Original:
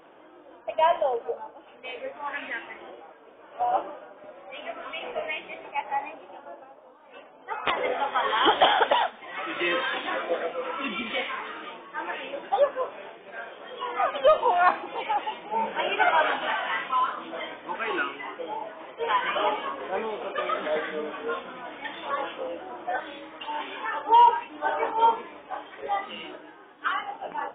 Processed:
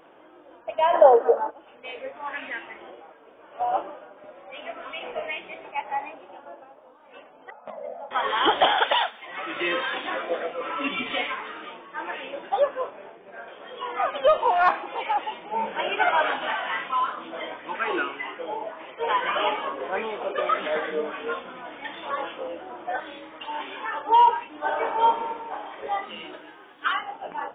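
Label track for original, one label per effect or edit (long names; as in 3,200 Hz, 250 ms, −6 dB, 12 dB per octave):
0.940000	1.500000	gain on a spectral selection 230–2,000 Hz +12 dB
7.500000	8.110000	pair of resonant band-passes 360 Hz, apart 1.5 octaves
8.780000	9.270000	spectral tilt +3.5 dB per octave
10.600000	11.340000	comb filter 6.9 ms, depth 92%
12.900000	13.480000	low-pass filter 1,300 Hz 6 dB per octave
14.400000	15.180000	mid-hump overdrive drive 8 dB, tone 2,600 Hz, clips at −9.5 dBFS
17.410000	21.330000	auto-filter bell 1.7 Hz 400–2,800 Hz +7 dB
24.640000	25.830000	thrown reverb, RT60 1.5 s, DRR 4.5 dB
26.330000	26.980000	high-shelf EQ 2,700 Hz +11 dB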